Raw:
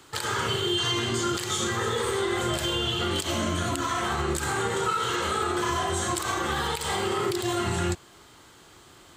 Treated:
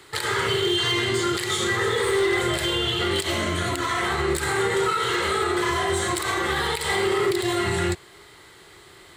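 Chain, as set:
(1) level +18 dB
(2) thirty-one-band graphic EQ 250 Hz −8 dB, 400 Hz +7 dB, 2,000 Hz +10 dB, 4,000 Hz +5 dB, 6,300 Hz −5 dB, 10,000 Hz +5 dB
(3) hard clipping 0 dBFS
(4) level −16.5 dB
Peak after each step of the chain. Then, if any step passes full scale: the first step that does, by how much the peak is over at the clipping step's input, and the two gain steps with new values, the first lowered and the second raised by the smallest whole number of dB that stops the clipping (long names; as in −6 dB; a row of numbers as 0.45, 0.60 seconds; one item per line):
+5.5, +8.5, 0.0, −16.5 dBFS
step 1, 8.5 dB
step 1 +9 dB, step 4 −7.5 dB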